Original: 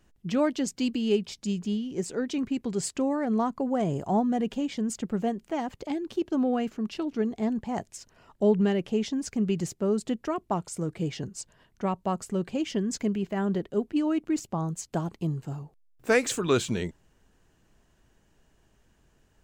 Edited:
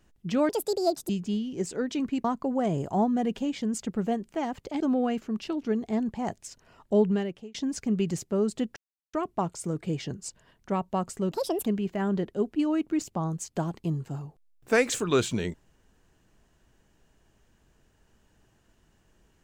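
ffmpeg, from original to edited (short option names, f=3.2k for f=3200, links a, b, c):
-filter_complex "[0:a]asplit=9[a][b][c][d][e][f][g][h][i];[a]atrim=end=0.494[j];[b]atrim=start=0.49:end=1.48,asetpts=PTS-STARTPTS,asetrate=72324,aresample=44100,atrim=end_sample=26621,asetpts=PTS-STARTPTS[k];[c]atrim=start=1.476:end=2.632[l];[d]atrim=start=3.398:end=5.962[m];[e]atrim=start=6.298:end=9.04,asetpts=PTS-STARTPTS,afade=t=out:st=2.212:d=0.53[n];[f]atrim=start=9.04:end=10.26,asetpts=PTS-STARTPTS,afade=t=in:d=0.004:c=hsin,afade=t=out:st=1.216:d=0.004:c=hsin,apad=pad_dur=0.37[o];[g]atrim=start=10.26:end=12.444,asetpts=PTS-STARTPTS,afade=t=in:d=0.004:c=hsin[p];[h]atrim=start=12.44:end=13.03,asetpts=PTS-STARTPTS,asetrate=75411,aresample=44100[q];[i]atrim=start=13.026[r];[j][k]acrossfade=d=0.004:c1=hsin:c2=hsin[s];[s][l]acrossfade=d=0.004:c1=hsin:c2=hsin[t];[t][m]acrossfade=d=0.004:c1=hsin:c2=hsin[u];[n][o][p]concat=n=3:v=0:a=1[v];[u][v]acrossfade=d=0.004:c1=hsin:c2=hsin[w];[w][q]acrossfade=d=0.004:c1=hsin:c2=hsin[x];[x][r]acrossfade=d=0.004:c1=hsin:c2=hsin"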